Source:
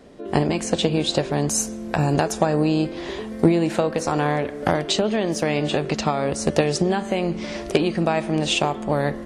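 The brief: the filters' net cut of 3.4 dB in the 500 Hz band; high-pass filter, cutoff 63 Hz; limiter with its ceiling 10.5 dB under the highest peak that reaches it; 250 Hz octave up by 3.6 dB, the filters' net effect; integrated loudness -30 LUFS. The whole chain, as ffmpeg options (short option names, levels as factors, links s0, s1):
-af "highpass=63,equalizer=f=250:t=o:g=8,equalizer=f=500:t=o:g=-7.5,volume=0.473,alimiter=limit=0.106:level=0:latency=1"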